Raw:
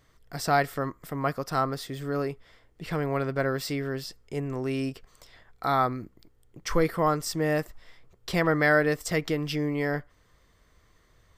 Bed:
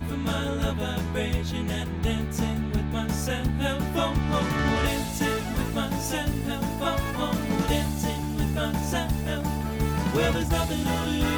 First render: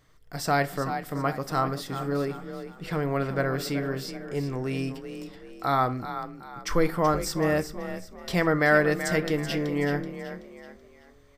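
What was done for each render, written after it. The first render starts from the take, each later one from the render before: on a send: frequency-shifting echo 0.379 s, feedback 39%, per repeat +33 Hz, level -10.5 dB; on the sum: shoebox room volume 340 m³, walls furnished, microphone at 0.45 m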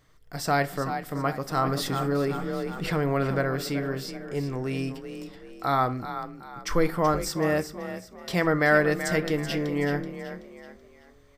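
1.57–3.39 fast leveller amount 50%; 7.29–8.44 HPF 87 Hz 6 dB/oct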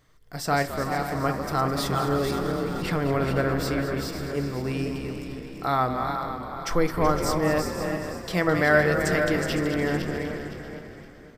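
regenerating reverse delay 0.257 s, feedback 54%, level -6.5 dB; on a send: frequency-shifting echo 0.212 s, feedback 59%, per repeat -69 Hz, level -11.5 dB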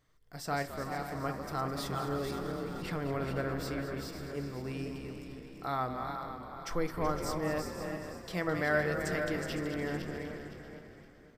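gain -10 dB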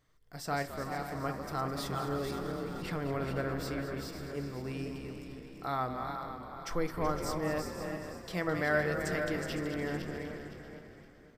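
nothing audible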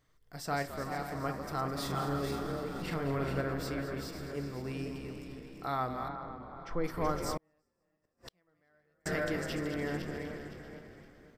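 1.77–3.41 doubler 43 ms -6 dB; 6.08–6.84 tape spacing loss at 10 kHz 26 dB; 7.37–9.06 flipped gate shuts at -32 dBFS, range -41 dB

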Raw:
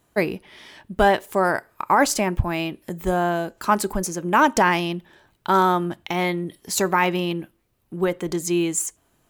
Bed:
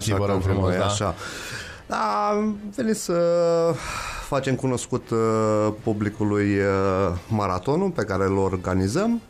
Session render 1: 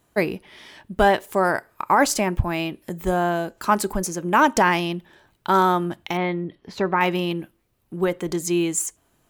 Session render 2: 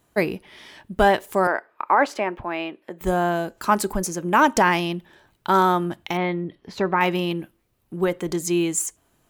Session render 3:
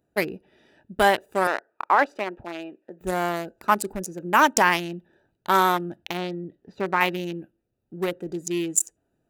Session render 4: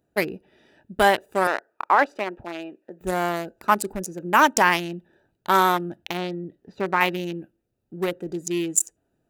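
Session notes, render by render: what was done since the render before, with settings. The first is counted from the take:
6.17–7.01 air absorption 310 m
1.47–3.01 three-band isolator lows -22 dB, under 280 Hz, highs -21 dB, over 3400 Hz
Wiener smoothing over 41 samples; tilt +2.5 dB/oct
gain +1 dB; limiter -3 dBFS, peak gain reduction 2 dB

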